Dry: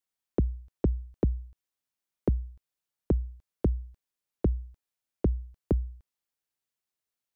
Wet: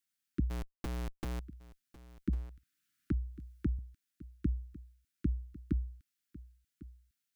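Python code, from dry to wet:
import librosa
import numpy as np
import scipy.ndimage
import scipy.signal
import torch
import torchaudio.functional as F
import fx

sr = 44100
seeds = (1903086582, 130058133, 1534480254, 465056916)

p1 = scipy.signal.sosfilt(scipy.signal.ellip(3, 1.0, 40, [300.0, 1400.0], 'bandstop', fs=sr, output='sos'), x)
p2 = fx.low_shelf(p1, sr, hz=99.0, db=-10.0)
p3 = fx.over_compress(p2, sr, threshold_db=-32.0, ratio=-0.5)
p4 = p2 + (p3 * librosa.db_to_amplitude(-2.0))
p5 = fx.schmitt(p4, sr, flips_db=-45.0, at=(0.5, 1.4))
p6 = p5 + fx.echo_single(p5, sr, ms=1101, db=-18.0, dry=0)
p7 = fx.band_squash(p6, sr, depth_pct=40, at=(2.29, 3.79))
y = p7 * librosa.db_to_amplitude(-3.5)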